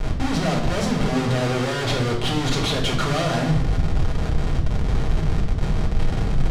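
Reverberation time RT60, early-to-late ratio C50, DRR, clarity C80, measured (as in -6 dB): 0.75 s, 6.5 dB, -1.5 dB, 9.5 dB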